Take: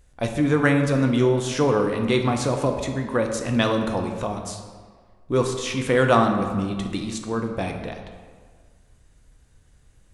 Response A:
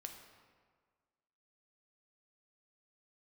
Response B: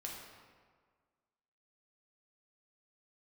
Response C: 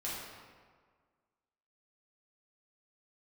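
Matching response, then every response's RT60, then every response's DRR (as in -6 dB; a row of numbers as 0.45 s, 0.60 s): A; 1.7 s, 1.7 s, 1.7 s; 3.5 dB, -2.5 dB, -8.0 dB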